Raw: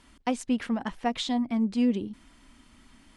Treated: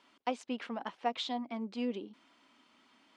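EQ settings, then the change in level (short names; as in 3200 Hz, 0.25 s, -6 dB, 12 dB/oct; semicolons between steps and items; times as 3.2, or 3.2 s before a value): BPF 400–4300 Hz; bell 1800 Hz -5 dB 0.46 oct; -3.0 dB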